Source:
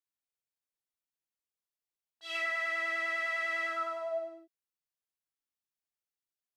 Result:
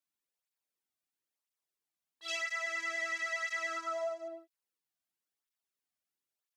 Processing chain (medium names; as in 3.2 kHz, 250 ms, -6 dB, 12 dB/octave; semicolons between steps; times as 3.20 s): 2.28–4.28 s: peaking EQ 6.4 kHz +15 dB 0.77 oct; compression, threshold -35 dBFS, peak gain reduction 7 dB; cancelling through-zero flanger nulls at 1 Hz, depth 2.4 ms; trim +4.5 dB